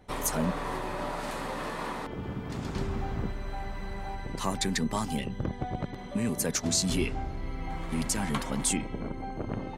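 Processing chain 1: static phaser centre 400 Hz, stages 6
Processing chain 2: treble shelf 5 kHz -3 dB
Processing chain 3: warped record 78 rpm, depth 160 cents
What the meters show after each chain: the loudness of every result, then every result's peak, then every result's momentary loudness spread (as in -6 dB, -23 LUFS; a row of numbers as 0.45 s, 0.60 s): -34.0 LUFS, -33.0 LUFS, -32.5 LUFS; -16.0 dBFS, -16.0 dBFS, -14.5 dBFS; 11 LU, 8 LU, 9 LU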